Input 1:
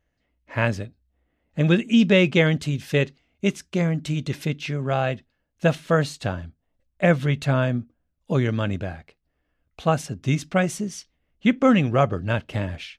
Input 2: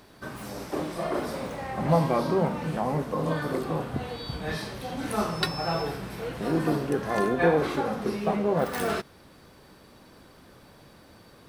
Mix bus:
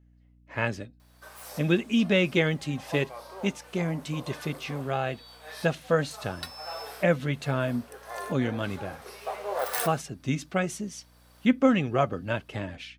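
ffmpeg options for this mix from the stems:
ffmpeg -i stem1.wav -i stem2.wav -filter_complex "[0:a]flanger=delay=2.3:depth=1.7:regen=59:speed=1.6:shape=sinusoidal,highpass=110,aeval=exprs='val(0)+0.00141*(sin(2*PI*60*n/s)+sin(2*PI*2*60*n/s)/2+sin(2*PI*3*60*n/s)/3+sin(2*PI*4*60*n/s)/4+sin(2*PI*5*60*n/s)/5)':channel_layout=same,volume=-0.5dB,asplit=2[link_01][link_02];[1:a]highpass=frequency=520:width=0.5412,highpass=frequency=520:width=1.3066,highshelf=frequency=6200:gain=11,adelay=1000,volume=0.5dB[link_03];[link_02]apad=whole_len=550569[link_04];[link_03][link_04]sidechaincompress=threshold=-41dB:ratio=4:attack=16:release=860[link_05];[link_01][link_05]amix=inputs=2:normalize=0" out.wav

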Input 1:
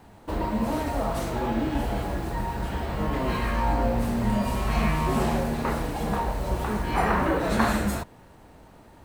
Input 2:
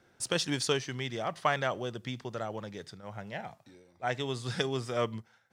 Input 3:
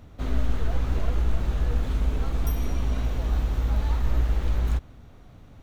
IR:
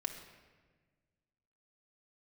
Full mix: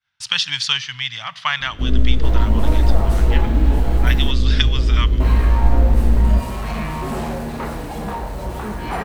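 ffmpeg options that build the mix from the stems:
-filter_complex "[0:a]asoftclip=type=tanh:threshold=-19.5dB,adelay=1950,volume=2dB,asplit=3[link_01][link_02][link_03];[link_01]atrim=end=4.31,asetpts=PTS-STARTPTS,afade=type=out:start_time=4.306:duration=0.004:curve=hsin[link_04];[link_02]atrim=start=4.31:end=5.2,asetpts=PTS-STARTPTS,volume=0[link_05];[link_03]atrim=start=5.2,asetpts=PTS-STARTPTS,afade=type=in:duration=0.004:curve=hsin[link_06];[link_04][link_05][link_06]concat=n=3:v=0:a=1[link_07];[1:a]firequalizer=gain_entry='entry(110,0);entry(350,-28);entry(940,3);entry(3000,14);entry(9000,-6)':delay=0.05:min_phase=1,agate=range=-33dB:threshold=-50dB:ratio=3:detection=peak,volume=2dB,asplit=2[link_08][link_09];[link_09]volume=-13dB[link_10];[2:a]lowshelf=frequency=560:width_type=q:width=1.5:gain=10,flanger=delay=18:depth=2.2:speed=1.3,adelay=1600,volume=0.5dB[link_11];[3:a]atrim=start_sample=2205[link_12];[link_10][link_12]afir=irnorm=-1:irlink=0[link_13];[link_07][link_08][link_11][link_13]amix=inputs=4:normalize=0"

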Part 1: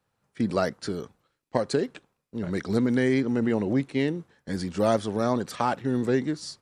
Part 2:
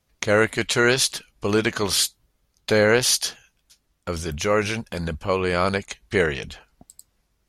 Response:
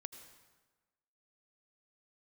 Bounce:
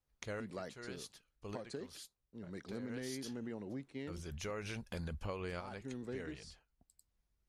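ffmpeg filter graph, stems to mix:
-filter_complex "[0:a]volume=-18dB,asplit=3[link_01][link_02][link_03];[link_01]atrim=end=4.51,asetpts=PTS-STARTPTS,afade=type=out:start_time=4.506:duration=0.004:curve=hsin[link_04];[link_02]atrim=start=4.51:end=5.48,asetpts=PTS-STARTPTS,volume=0[link_05];[link_03]atrim=start=5.48,asetpts=PTS-STARTPTS,afade=type=in:duration=0.004:curve=hsin[link_06];[link_04][link_05][link_06]concat=n=3:v=0:a=1,asplit=2[link_07][link_08];[1:a]lowshelf=frequency=89:gain=10,volume=-8.5dB,afade=type=in:start_time=2.89:duration=0.34:silence=0.251189,afade=type=out:start_time=5.92:duration=0.77:silence=0.375837[link_09];[link_08]apad=whole_len=329918[link_10];[link_09][link_10]sidechaincompress=threshold=-53dB:ratio=4:attack=20:release=1010[link_11];[link_07][link_11]amix=inputs=2:normalize=0,acompressor=threshold=-38dB:ratio=12"

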